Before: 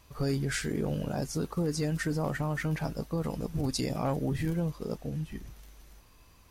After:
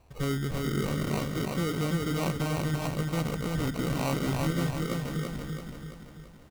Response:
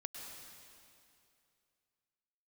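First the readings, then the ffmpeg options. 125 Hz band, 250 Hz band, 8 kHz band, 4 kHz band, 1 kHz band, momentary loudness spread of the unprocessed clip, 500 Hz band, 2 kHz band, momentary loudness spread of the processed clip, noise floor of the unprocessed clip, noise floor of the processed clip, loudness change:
+2.0 dB, +2.0 dB, 0.0 dB, +3.5 dB, +3.5 dB, 6 LU, +1.0 dB, +1.5 dB, 10 LU, -58 dBFS, -50 dBFS, +2.0 dB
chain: -af "equalizer=f=5700:t=o:w=1.7:g=-12.5,acrusher=samples=26:mix=1:aa=0.000001,aecho=1:1:335|670|1005|1340|1675|2010|2345:0.708|0.361|0.184|0.0939|0.0479|0.0244|0.0125"

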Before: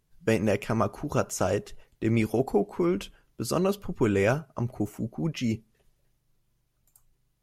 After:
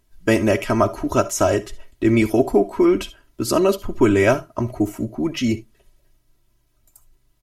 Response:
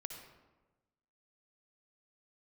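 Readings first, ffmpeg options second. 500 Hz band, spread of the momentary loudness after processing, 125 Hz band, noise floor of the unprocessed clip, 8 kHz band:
+8.5 dB, 8 LU, +4.0 dB, -73 dBFS, +8.5 dB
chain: -filter_complex "[0:a]aecho=1:1:3.1:0.73,asplit=2[s0][s1];[1:a]atrim=start_sample=2205,atrim=end_sample=3528[s2];[s1][s2]afir=irnorm=-1:irlink=0,volume=1.19[s3];[s0][s3]amix=inputs=2:normalize=0,volume=1.26"

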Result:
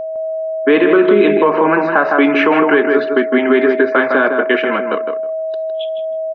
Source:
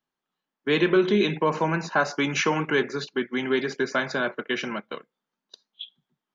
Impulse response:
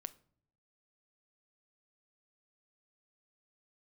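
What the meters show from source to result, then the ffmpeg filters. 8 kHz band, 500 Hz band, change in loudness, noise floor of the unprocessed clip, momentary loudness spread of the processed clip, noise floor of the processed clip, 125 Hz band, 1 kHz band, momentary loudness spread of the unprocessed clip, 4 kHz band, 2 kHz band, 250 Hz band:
no reading, +14.0 dB, +11.0 dB, under -85 dBFS, 11 LU, -21 dBFS, -1.5 dB, +12.0 dB, 20 LU, +2.5 dB, +11.0 dB, +12.0 dB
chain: -filter_complex "[0:a]asplit=2[s0][s1];[s1]acompressor=threshold=0.0224:ratio=6,volume=0.944[s2];[s0][s2]amix=inputs=2:normalize=0,highpass=f=230:w=0.5412,highpass=f=230:w=1.3066,equalizer=f=290:t=q:w=4:g=6,equalizer=f=440:t=q:w=4:g=5,equalizer=f=740:t=q:w=4:g=3,equalizer=f=1200:t=q:w=4:g=6,equalizer=f=1700:t=q:w=4:g=3,lowpass=f=2800:w=0.5412,lowpass=f=2800:w=1.3066,aeval=exprs='val(0)+0.0398*sin(2*PI*640*n/s)':c=same,asplit=2[s3][s4];[s4]adelay=158,lowpass=f=2000:p=1,volume=0.531,asplit=2[s5][s6];[s6]adelay=158,lowpass=f=2000:p=1,volume=0.16,asplit=2[s7][s8];[s8]adelay=158,lowpass=f=2000:p=1,volume=0.16[s9];[s3][s5][s7][s9]amix=inputs=4:normalize=0,alimiter=level_in=2.66:limit=0.891:release=50:level=0:latency=1,volume=0.891"

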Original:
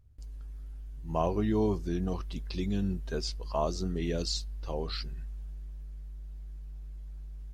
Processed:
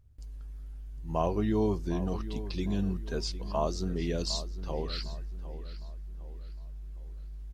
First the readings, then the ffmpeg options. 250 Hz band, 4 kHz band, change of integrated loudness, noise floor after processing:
0.0 dB, 0.0 dB, 0.0 dB, -42 dBFS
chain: -filter_complex "[0:a]asplit=2[s0][s1];[s1]adelay=757,lowpass=f=3600:p=1,volume=0.211,asplit=2[s2][s3];[s3]adelay=757,lowpass=f=3600:p=1,volume=0.4,asplit=2[s4][s5];[s5]adelay=757,lowpass=f=3600:p=1,volume=0.4,asplit=2[s6][s7];[s7]adelay=757,lowpass=f=3600:p=1,volume=0.4[s8];[s0][s2][s4][s6][s8]amix=inputs=5:normalize=0"

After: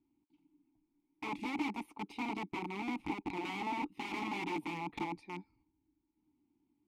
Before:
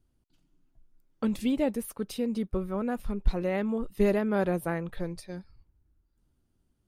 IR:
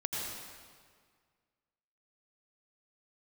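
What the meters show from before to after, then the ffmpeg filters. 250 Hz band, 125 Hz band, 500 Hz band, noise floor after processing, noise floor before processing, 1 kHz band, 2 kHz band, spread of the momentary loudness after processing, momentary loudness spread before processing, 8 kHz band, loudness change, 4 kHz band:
-10.5 dB, -15.0 dB, -17.5 dB, -82 dBFS, -74 dBFS, +0.5 dB, -1.5 dB, 7 LU, 10 LU, -11.5 dB, -9.5 dB, -1.0 dB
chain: -filter_complex "[0:a]aeval=exprs='(tanh(8.91*val(0)+0.45)-tanh(0.45))/8.91':c=same,aeval=exprs='(mod(33.5*val(0)+1,2)-1)/33.5':c=same,asplit=3[s0][s1][s2];[s0]bandpass=f=300:t=q:w=8,volume=1[s3];[s1]bandpass=f=870:t=q:w=8,volume=0.501[s4];[s2]bandpass=f=2240:t=q:w=8,volume=0.355[s5];[s3][s4][s5]amix=inputs=3:normalize=0,volume=3.98"

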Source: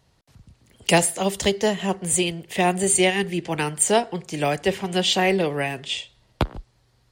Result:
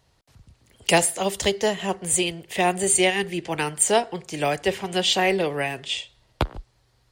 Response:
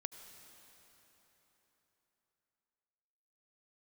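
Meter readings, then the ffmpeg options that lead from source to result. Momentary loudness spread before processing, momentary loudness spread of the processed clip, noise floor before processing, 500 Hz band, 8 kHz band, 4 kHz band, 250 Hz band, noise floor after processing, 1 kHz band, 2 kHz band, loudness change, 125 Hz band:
10 LU, 11 LU, -63 dBFS, -1.0 dB, 0.0 dB, 0.0 dB, -3.5 dB, -64 dBFS, -0.5 dB, 0.0 dB, -0.5 dB, -4.0 dB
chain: -af "equalizer=f=190:t=o:w=1.3:g=-5"

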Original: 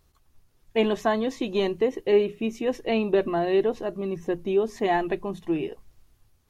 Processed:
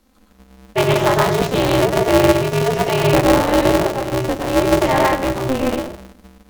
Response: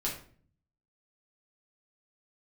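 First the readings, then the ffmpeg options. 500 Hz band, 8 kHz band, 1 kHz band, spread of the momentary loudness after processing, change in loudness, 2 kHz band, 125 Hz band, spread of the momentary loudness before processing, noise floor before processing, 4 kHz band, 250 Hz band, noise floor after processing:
+7.5 dB, no reading, +12.5 dB, 7 LU, +9.5 dB, +12.0 dB, +18.0 dB, 8 LU, -65 dBFS, +12.5 dB, +9.0 dB, -52 dBFS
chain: -filter_complex "[0:a]afreqshift=58,asplit=2[s0][s1];[1:a]atrim=start_sample=2205,asetrate=37926,aresample=44100,adelay=106[s2];[s1][s2]afir=irnorm=-1:irlink=0,volume=0.631[s3];[s0][s3]amix=inputs=2:normalize=0,aeval=exprs='val(0)*sgn(sin(2*PI*130*n/s))':c=same,volume=1.78"

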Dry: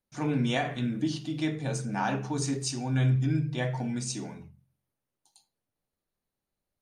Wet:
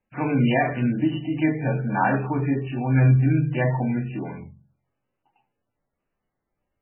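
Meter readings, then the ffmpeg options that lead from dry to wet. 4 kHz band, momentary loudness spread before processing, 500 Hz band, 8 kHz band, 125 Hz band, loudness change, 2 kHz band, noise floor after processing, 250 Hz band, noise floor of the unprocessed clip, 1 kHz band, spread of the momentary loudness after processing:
no reading, 7 LU, +8.0 dB, under -40 dB, +7.5 dB, +7.5 dB, +8.0 dB, -81 dBFS, +7.5 dB, under -85 dBFS, +8.5 dB, 9 LU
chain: -af "bandreject=f=50:t=h:w=6,bandreject=f=100:t=h:w=6,bandreject=f=150:t=h:w=6,bandreject=f=200:t=h:w=6,bandreject=f=250:t=h:w=6,bandreject=f=300:t=h:w=6,bandreject=f=350:t=h:w=6,bandreject=f=400:t=h:w=6,bandreject=f=450:t=h:w=6,volume=2.66" -ar 12000 -c:a libmp3lame -b:a 8k

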